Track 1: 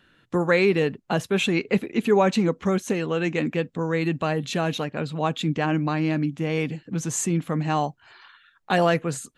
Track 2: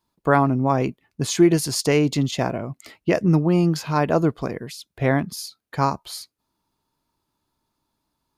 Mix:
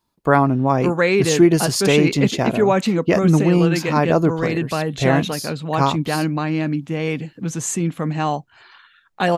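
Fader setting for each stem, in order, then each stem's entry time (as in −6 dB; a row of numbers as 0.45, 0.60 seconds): +2.5, +2.5 decibels; 0.50, 0.00 seconds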